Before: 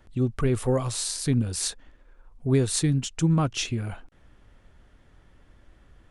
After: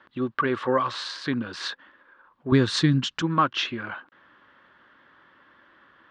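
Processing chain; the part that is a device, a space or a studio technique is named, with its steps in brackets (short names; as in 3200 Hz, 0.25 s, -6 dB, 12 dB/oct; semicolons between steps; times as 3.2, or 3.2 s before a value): phone earpiece (speaker cabinet 380–3700 Hz, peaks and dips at 440 Hz -8 dB, 710 Hz -9 dB, 1100 Hz +7 dB, 1600 Hz +7 dB, 2400 Hz -5 dB); 2.52–3.22 tone controls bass +13 dB, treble +10 dB; gain +7 dB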